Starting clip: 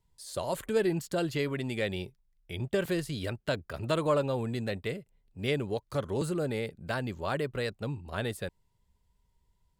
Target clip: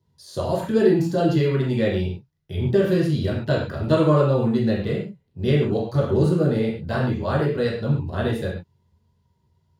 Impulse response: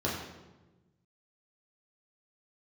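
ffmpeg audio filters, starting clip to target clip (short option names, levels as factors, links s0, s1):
-filter_complex "[0:a]highpass=77[s0];[1:a]atrim=start_sample=2205,atrim=end_sample=6615[s1];[s0][s1]afir=irnorm=-1:irlink=0,volume=0.841"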